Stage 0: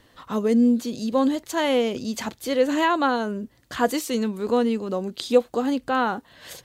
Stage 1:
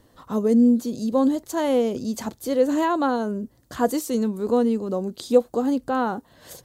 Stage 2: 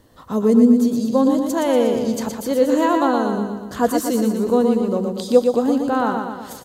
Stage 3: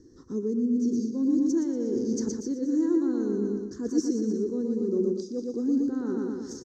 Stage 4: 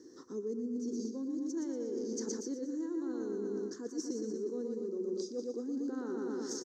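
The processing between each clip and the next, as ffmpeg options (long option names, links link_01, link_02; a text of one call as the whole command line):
ffmpeg -i in.wav -af "equalizer=frequency=2500:width_type=o:width=1.9:gain=-12,volume=2dB" out.wav
ffmpeg -i in.wav -af "aecho=1:1:119|238|357|476|595|714|833:0.562|0.309|0.17|0.0936|0.0515|0.0283|0.0156,volume=3dB" out.wav
ffmpeg -i in.wav -af "areverse,acompressor=threshold=-23dB:ratio=10,areverse,firequalizer=gain_entry='entry(180,0);entry(360,14);entry(610,-20);entry(1700,-8);entry(2600,-29);entry(5700,10);entry(10000,-29)':delay=0.05:min_phase=1,volume=-4.5dB" out.wav
ffmpeg -i in.wav -af "highpass=360,areverse,acompressor=threshold=-38dB:ratio=10,areverse,volume=4dB" out.wav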